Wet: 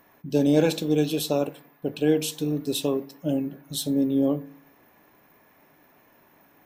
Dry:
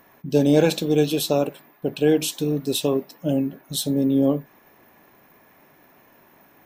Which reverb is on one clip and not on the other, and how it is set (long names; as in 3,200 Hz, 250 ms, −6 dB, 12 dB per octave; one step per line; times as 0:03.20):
feedback delay network reverb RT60 0.55 s, low-frequency decay 1.3×, high-frequency decay 0.6×, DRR 15 dB
level −4 dB